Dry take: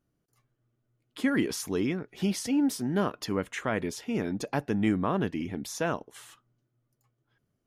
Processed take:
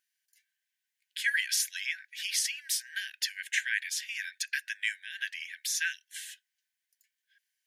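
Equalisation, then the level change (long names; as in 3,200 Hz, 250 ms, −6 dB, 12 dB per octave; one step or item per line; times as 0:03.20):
linear-phase brick-wall high-pass 1,500 Hz
+7.5 dB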